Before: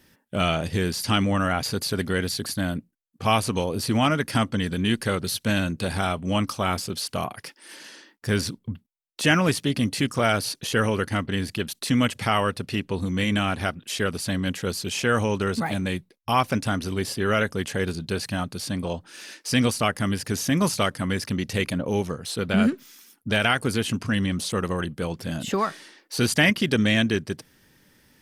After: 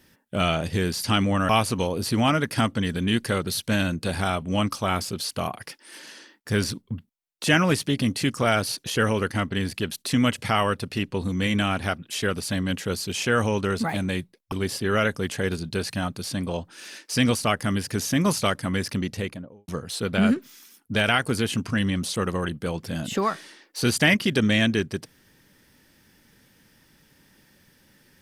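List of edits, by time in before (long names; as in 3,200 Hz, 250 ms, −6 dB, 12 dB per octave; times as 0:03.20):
0:01.49–0:03.26: remove
0:16.29–0:16.88: remove
0:21.29–0:22.04: fade out and dull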